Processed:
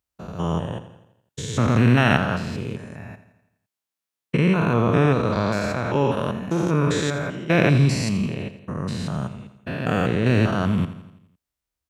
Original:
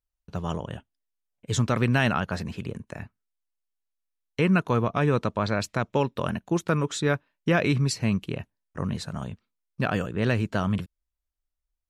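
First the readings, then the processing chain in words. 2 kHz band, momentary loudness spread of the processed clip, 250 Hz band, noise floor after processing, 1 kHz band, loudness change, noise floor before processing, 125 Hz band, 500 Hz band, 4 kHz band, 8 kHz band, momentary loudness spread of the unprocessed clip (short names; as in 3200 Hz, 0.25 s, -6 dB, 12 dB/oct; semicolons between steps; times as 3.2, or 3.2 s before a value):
+4.0 dB, 16 LU, +5.5 dB, under -85 dBFS, +4.0 dB, +5.0 dB, -84 dBFS, +6.0 dB, +4.5 dB, +3.5 dB, +1.5 dB, 15 LU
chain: stepped spectrum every 0.2 s; HPF 85 Hz; feedback echo 84 ms, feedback 54%, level -13 dB; gain +8 dB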